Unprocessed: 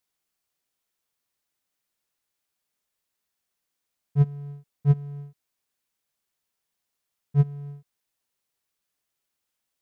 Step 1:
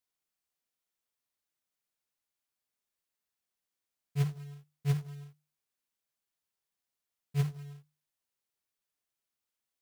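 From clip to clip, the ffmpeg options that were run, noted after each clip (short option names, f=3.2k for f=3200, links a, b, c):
-af "bandreject=f=50:t=h:w=6,bandreject=f=100:t=h:w=6,bandreject=f=150:t=h:w=6,acrusher=bits=4:mode=log:mix=0:aa=0.000001,volume=-7.5dB"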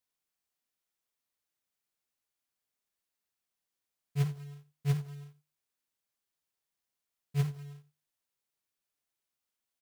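-af "aecho=1:1:89:0.112"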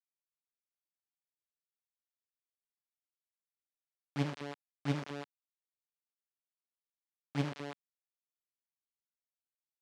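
-af "acrusher=bits=4:dc=4:mix=0:aa=0.000001,highpass=180,lowpass=4.9k,volume=4.5dB"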